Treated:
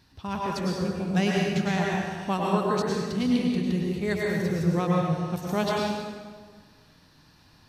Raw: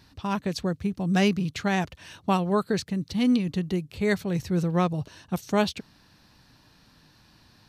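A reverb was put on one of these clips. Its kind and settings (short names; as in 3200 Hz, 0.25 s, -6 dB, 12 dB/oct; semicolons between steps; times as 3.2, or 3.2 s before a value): plate-style reverb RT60 1.6 s, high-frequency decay 0.75×, pre-delay 90 ms, DRR -3.5 dB; gain -4.5 dB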